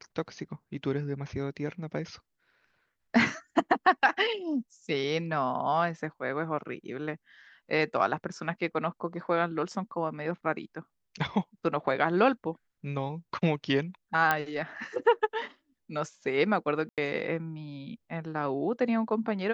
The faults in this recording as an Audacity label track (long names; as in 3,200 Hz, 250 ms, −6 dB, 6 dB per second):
14.310000	14.310000	click −11 dBFS
16.890000	16.980000	drop-out 87 ms